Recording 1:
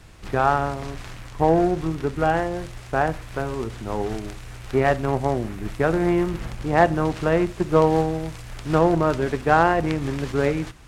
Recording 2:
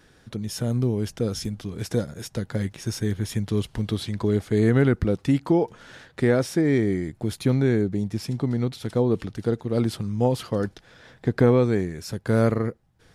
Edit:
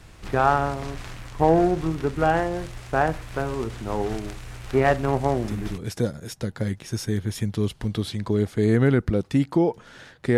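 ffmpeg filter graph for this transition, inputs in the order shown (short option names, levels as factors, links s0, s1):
-filter_complex "[0:a]apad=whole_dur=10.37,atrim=end=10.37,atrim=end=5.78,asetpts=PTS-STARTPTS[s0];[1:a]atrim=start=1.42:end=6.31,asetpts=PTS-STARTPTS[s1];[s0][s1]acrossfade=d=0.3:c1=log:c2=log"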